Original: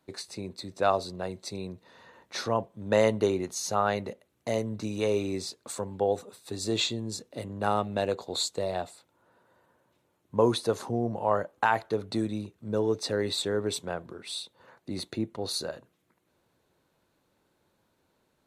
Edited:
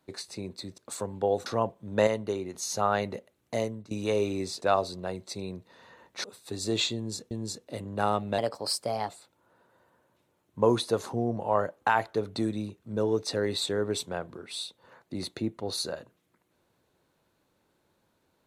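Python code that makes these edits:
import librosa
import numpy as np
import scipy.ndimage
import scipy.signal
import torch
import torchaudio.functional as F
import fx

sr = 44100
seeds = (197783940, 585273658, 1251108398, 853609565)

y = fx.edit(x, sr, fx.swap(start_s=0.78, length_s=1.62, other_s=5.56, other_length_s=0.68),
    fx.clip_gain(start_s=3.01, length_s=0.47, db=-6.0),
    fx.fade_out_to(start_s=4.52, length_s=0.33, floor_db=-18.5),
    fx.repeat(start_s=6.95, length_s=0.36, count=2),
    fx.speed_span(start_s=8.02, length_s=0.83, speed=1.17), tone=tone)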